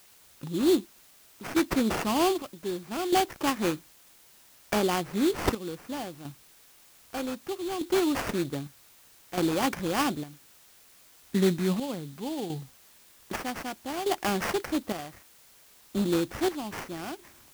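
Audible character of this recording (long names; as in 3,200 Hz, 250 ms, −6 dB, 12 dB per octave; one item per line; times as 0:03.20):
aliases and images of a low sample rate 3,900 Hz, jitter 20%
chopped level 0.64 Hz, depth 65%, duty 55%
a quantiser's noise floor 10 bits, dither triangular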